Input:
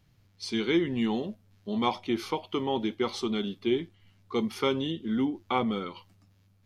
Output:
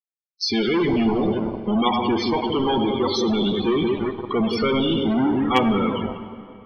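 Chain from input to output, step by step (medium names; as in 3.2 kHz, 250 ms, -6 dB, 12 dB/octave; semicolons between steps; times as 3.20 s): gate with hold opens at -51 dBFS; treble shelf 2.7 kHz +5.5 dB; two-band feedback delay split 580 Hz, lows 172 ms, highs 100 ms, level -9.5 dB; companded quantiser 2-bit; loudest bins only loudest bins 32; hard clipper -8 dBFS, distortion -37 dB; reverberation RT60 2.6 s, pre-delay 43 ms, DRR 10.5 dB; trim +6.5 dB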